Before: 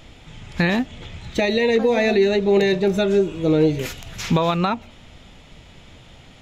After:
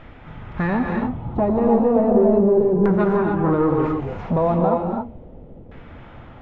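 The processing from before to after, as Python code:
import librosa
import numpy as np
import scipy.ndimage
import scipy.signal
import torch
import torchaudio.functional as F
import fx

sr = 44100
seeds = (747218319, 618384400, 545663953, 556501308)

y = fx.graphic_eq(x, sr, hz=(125, 250, 500, 1000, 2000, 4000, 8000), db=(4, 6, -4, 4, -6, -5, -9), at=(1.02, 3.5))
y = 10.0 ** (-20.0 / 20.0) * np.tanh(y / 10.0 ** (-20.0 / 20.0))
y = fx.filter_lfo_lowpass(y, sr, shape='saw_down', hz=0.35, low_hz=420.0, high_hz=1600.0, q=1.8)
y = fx.rev_gated(y, sr, seeds[0], gate_ms=320, shape='rising', drr_db=1.5)
y = y * 10.0 ** (2.5 / 20.0)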